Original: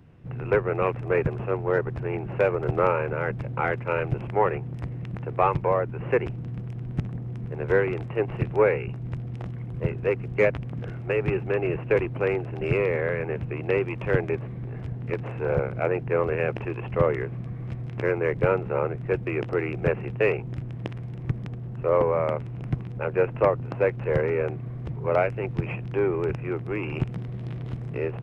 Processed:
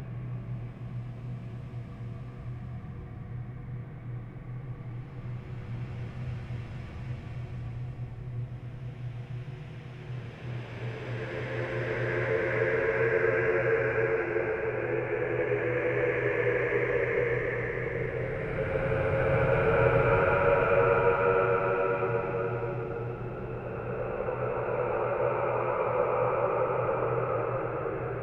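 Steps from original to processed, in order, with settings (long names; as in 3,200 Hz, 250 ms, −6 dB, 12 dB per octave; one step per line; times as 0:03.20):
extreme stretch with random phases 18×, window 0.25 s, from 0:17.35
parametric band 210 Hz −7 dB 2.5 octaves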